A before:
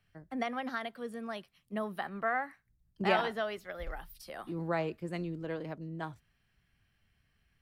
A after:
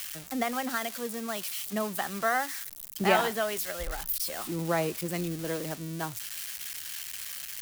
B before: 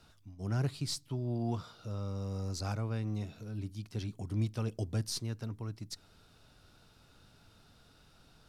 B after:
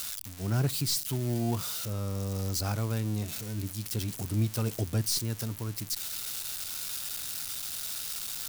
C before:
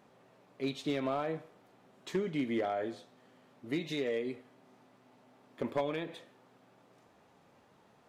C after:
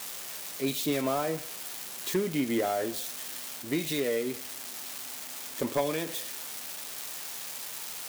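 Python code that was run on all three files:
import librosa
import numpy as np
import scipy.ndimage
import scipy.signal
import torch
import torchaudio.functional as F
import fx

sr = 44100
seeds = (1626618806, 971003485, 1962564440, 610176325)

y = x + 0.5 * 10.0 ** (-30.5 / 20.0) * np.diff(np.sign(x), prepend=np.sign(x[:1]))
y = y * 10.0 ** (4.5 / 20.0)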